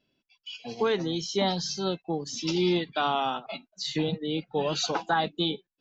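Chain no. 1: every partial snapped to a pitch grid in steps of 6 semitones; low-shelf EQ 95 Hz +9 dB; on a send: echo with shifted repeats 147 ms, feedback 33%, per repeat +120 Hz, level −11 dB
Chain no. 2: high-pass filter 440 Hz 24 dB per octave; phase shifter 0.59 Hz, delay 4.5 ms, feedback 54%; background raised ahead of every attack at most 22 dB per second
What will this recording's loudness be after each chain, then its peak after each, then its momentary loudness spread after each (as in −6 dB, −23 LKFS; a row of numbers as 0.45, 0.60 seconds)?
−22.5, −27.0 LKFS; −9.0, −11.5 dBFS; 9, 8 LU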